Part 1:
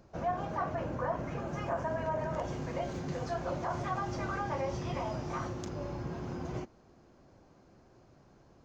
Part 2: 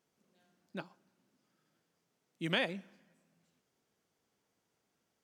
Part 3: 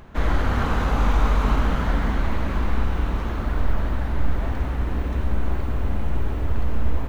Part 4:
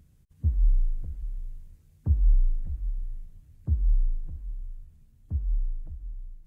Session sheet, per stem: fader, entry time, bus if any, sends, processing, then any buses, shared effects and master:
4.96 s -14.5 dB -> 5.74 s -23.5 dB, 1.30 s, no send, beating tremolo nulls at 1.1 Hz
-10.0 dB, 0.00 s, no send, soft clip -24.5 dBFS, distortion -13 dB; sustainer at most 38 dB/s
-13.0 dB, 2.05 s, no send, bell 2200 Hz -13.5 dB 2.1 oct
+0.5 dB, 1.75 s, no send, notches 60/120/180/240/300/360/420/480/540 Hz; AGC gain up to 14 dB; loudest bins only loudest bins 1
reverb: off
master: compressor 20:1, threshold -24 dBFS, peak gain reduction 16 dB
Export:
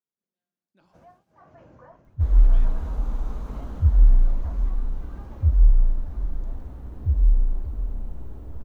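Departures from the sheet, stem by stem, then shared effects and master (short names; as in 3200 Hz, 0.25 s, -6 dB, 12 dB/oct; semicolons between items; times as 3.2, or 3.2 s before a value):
stem 1: entry 1.30 s -> 0.80 s; stem 2 -10.0 dB -> -21.5 dB; master: missing compressor 20:1, threshold -24 dBFS, peak gain reduction 16 dB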